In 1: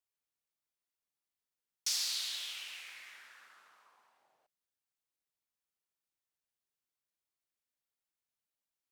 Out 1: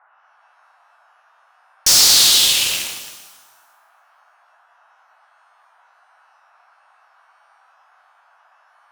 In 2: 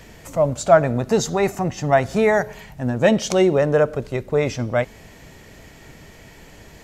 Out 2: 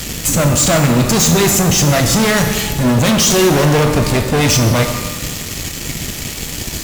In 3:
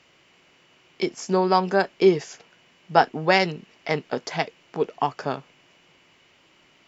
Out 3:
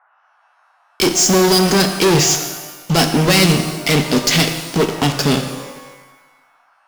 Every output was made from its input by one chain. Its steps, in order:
drawn EQ curve 260 Hz 0 dB, 1,000 Hz −18 dB, 3,000 Hz +3 dB, 7,200 Hz +8 dB
fuzz pedal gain 37 dB, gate −45 dBFS
noise in a band 680–1,600 Hz −60 dBFS
reverb with rising layers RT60 1.2 s, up +12 semitones, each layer −8 dB, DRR 5.5 dB
normalise the peak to −2 dBFS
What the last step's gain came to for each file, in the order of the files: +3.0, +1.5, +1.5 decibels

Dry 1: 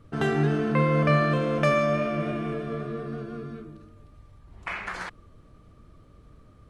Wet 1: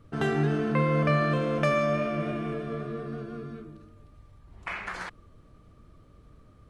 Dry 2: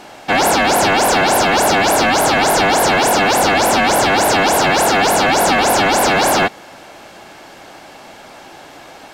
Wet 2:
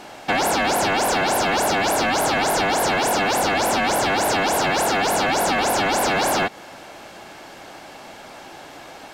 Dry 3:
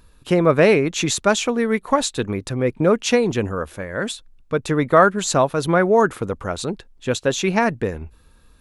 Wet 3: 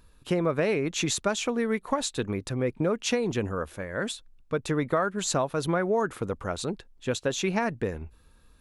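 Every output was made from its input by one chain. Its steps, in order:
downward compressor 6 to 1, threshold −16 dBFS
normalise the peak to −12 dBFS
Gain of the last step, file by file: −2.0, −2.0, −5.5 decibels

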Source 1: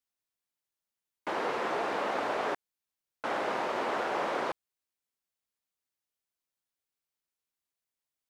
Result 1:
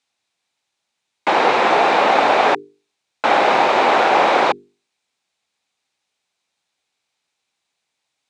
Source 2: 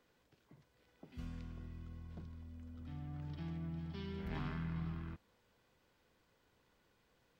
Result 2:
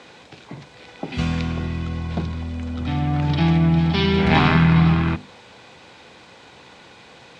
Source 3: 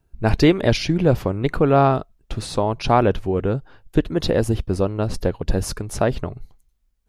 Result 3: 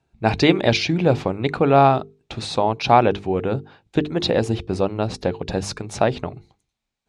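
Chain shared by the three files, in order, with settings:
loudspeaker in its box 100–8,300 Hz, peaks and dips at 800 Hz +6 dB, 2,400 Hz +6 dB, 3,800 Hz +6 dB
mains-hum notches 50/100/150/200/250/300/350/400/450 Hz
normalise the peak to −1.5 dBFS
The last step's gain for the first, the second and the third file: +15.0, +27.5, 0.0 decibels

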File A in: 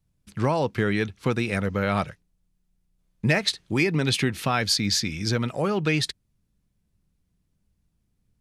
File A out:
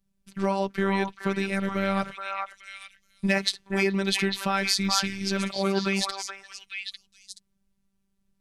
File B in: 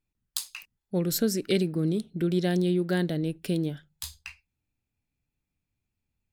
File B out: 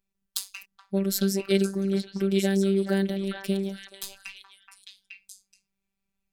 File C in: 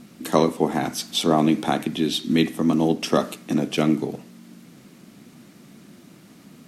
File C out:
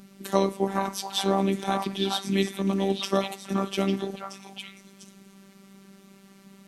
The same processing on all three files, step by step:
echo through a band-pass that steps 425 ms, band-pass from 1,100 Hz, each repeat 1.4 octaves, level −0.5 dB
phases set to zero 195 Hz
loudness normalisation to −27 LKFS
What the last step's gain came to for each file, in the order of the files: 0.0, +2.5, −2.5 decibels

